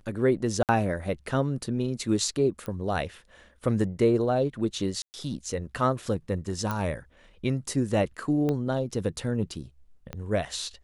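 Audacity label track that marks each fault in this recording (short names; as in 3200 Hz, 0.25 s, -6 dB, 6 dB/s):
0.630000	0.690000	gap 58 ms
2.660000	2.660000	pop -22 dBFS
5.020000	5.140000	gap 0.119 s
6.710000	6.710000	pop -16 dBFS
8.490000	8.490000	pop -17 dBFS
10.130000	10.130000	pop -20 dBFS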